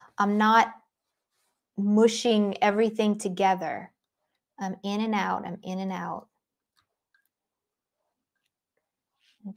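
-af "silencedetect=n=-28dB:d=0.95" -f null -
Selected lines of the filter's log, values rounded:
silence_start: 0.66
silence_end: 1.78 | silence_duration: 1.12
silence_start: 6.19
silence_end: 9.57 | silence_duration: 3.38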